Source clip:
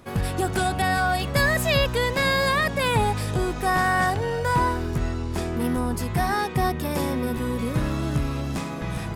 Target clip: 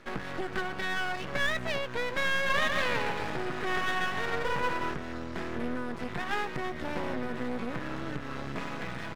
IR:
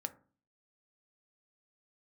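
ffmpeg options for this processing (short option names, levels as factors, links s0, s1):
-filter_complex "[0:a]acrossover=split=3000[s0][s1];[s1]acompressor=threshold=0.00447:ratio=4:attack=1:release=60[s2];[s0][s2]amix=inputs=2:normalize=0,asplit=2[s3][s4];[s4]adelay=16,volume=0.251[s5];[s3][s5]amix=inputs=2:normalize=0,acompressor=threshold=0.0562:ratio=6,highpass=170,lowpass=5700,equalizer=f=1700:t=o:w=0.62:g=7.5,bandreject=f=760:w=12,asplit=3[s6][s7][s8];[s6]afade=t=out:st=2.48:d=0.02[s9];[s7]aecho=1:1:140|252|341.6|413.3|470.6:0.631|0.398|0.251|0.158|0.1,afade=t=in:st=2.48:d=0.02,afade=t=out:st=4.93:d=0.02[s10];[s8]afade=t=in:st=4.93:d=0.02[s11];[s9][s10][s11]amix=inputs=3:normalize=0,aeval=exprs='max(val(0),0)':c=same"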